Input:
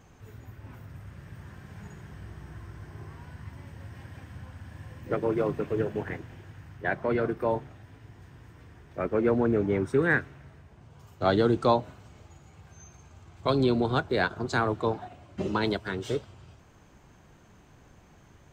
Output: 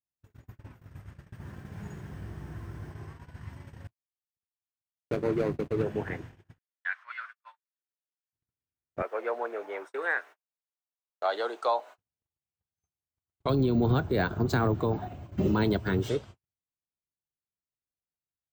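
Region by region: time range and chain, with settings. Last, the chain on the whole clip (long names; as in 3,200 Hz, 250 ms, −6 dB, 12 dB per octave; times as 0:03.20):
0:01.39–0:02.92: parametric band 260 Hz +4.5 dB 2.9 octaves + bit-depth reduction 12 bits, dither triangular + one half of a high-frequency compander decoder only
0:03.87–0:05.83: running median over 41 samples + noise gate −39 dBFS, range −25 dB + one half of a high-frequency compander encoder only
0:06.58–0:08.33: Butterworth high-pass 1,200 Hz + high-shelf EQ 5,300 Hz −12 dB
0:09.02–0:11.98: high-pass filter 610 Hz 24 dB per octave + tilt shelving filter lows +3.5 dB, about 1,100 Hz + bit-depth reduction 12 bits, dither none
0:13.49–0:16.09: low-shelf EQ 370 Hz +10.5 dB + bad sample-rate conversion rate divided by 2×, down filtered, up hold
whole clip: noise gate −43 dBFS, range −50 dB; brickwall limiter −17 dBFS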